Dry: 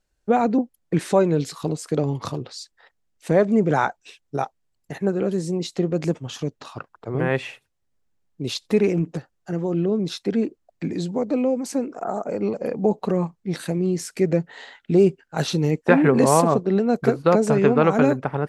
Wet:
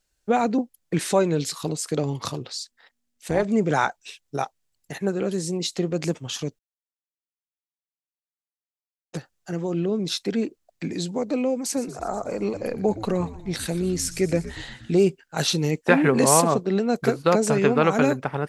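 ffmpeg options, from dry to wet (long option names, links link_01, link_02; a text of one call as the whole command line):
ffmpeg -i in.wav -filter_complex "[0:a]asplit=3[link_01][link_02][link_03];[link_01]afade=type=out:start_time=2.56:duration=0.02[link_04];[link_02]tremolo=f=240:d=0.621,afade=type=in:start_time=2.56:duration=0.02,afade=type=out:start_time=3.43:duration=0.02[link_05];[link_03]afade=type=in:start_time=3.43:duration=0.02[link_06];[link_04][link_05][link_06]amix=inputs=3:normalize=0,asettb=1/sr,asplit=3[link_07][link_08][link_09];[link_07]atrim=end=11.644[link_10];[link_08]atrim=start=11.64:end=14.96,asetpts=PTS-STARTPTS,afade=type=in:duration=0.004:curve=qsin,afade=type=out:start_time=3.316:duration=0.004:curve=qsin,asplit=8[link_11][link_12][link_13][link_14][link_15][link_16][link_17][link_18];[link_12]adelay=120,afreqshift=-99,volume=-14.5dB[link_19];[link_13]adelay=240,afreqshift=-198,volume=-18.7dB[link_20];[link_14]adelay=360,afreqshift=-297,volume=-22.8dB[link_21];[link_15]adelay=480,afreqshift=-396,volume=-27dB[link_22];[link_16]adelay=600,afreqshift=-495,volume=-31.1dB[link_23];[link_17]adelay=720,afreqshift=-594,volume=-35.3dB[link_24];[link_18]adelay=840,afreqshift=-693,volume=-39.4dB[link_25];[link_11][link_19][link_20][link_21][link_22][link_23][link_24][link_25]amix=inputs=8:normalize=0,atrim=end_sample=146412[link_26];[link_09]atrim=start=14.956[link_27];[link_10][link_26]acrossfade=duration=0.004:curve1=hsin:curve2=qsin[link_28];[link_28][link_27]acrossfade=duration=0.004:curve1=qsin:curve2=hsin,asplit=3[link_29][link_30][link_31];[link_29]atrim=end=6.59,asetpts=PTS-STARTPTS,afade=type=out:start_time=6.586:duration=0.004:curve=hsin[link_32];[link_30]atrim=start=6.59:end=9.13,asetpts=PTS-STARTPTS,volume=0[link_33];[link_31]atrim=start=9.13,asetpts=PTS-STARTPTS,afade=type=in:duration=0.004:curve=hsin[link_34];[link_32][link_33][link_34]concat=n=3:v=0:a=1,highshelf=frequency=2100:gain=10.5,volume=-3dB" out.wav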